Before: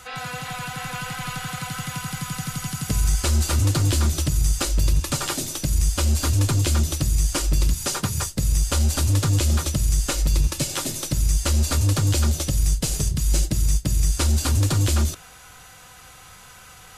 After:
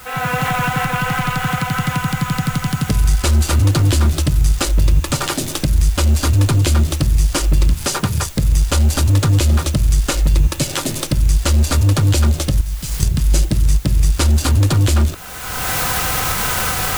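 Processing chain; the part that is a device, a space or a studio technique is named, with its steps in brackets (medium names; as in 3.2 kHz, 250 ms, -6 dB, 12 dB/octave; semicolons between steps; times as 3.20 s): local Wiener filter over 9 samples; 12.61–13.03 s: amplifier tone stack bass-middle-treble 6-0-2; cheap recorder with automatic gain (white noise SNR 27 dB; recorder AGC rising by 31 dB/s); trim +6.5 dB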